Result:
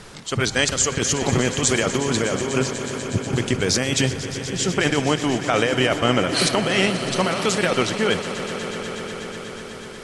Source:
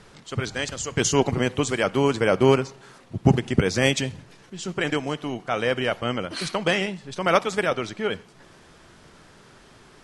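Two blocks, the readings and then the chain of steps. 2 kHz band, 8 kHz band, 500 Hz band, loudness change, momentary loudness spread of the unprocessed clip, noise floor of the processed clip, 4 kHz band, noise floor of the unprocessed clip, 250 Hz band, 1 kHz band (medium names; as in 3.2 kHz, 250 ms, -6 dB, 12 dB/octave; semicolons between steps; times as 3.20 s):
+4.0 dB, +9.0 dB, +1.5 dB, +2.5 dB, 11 LU, -35 dBFS, +7.0 dB, -52 dBFS, +3.0 dB, +2.0 dB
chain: treble shelf 4.9 kHz +6.5 dB; compressor with a negative ratio -25 dBFS, ratio -1; echo with a slow build-up 122 ms, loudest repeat 5, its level -15.5 dB; trim +4.5 dB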